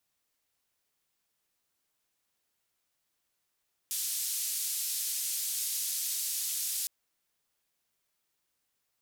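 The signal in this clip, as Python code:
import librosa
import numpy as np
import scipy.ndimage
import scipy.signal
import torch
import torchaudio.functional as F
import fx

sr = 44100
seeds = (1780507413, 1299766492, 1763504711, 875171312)

y = fx.band_noise(sr, seeds[0], length_s=2.96, low_hz=4700.0, high_hz=14000.0, level_db=-33.5)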